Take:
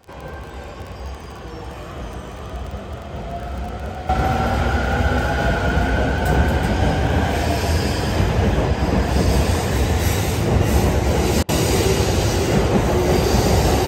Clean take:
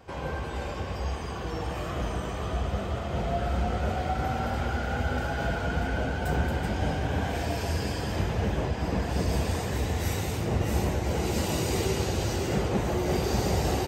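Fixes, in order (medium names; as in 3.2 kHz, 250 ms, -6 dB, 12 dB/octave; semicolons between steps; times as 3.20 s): de-click; interpolate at 11.43 s, 56 ms; trim 0 dB, from 4.09 s -10 dB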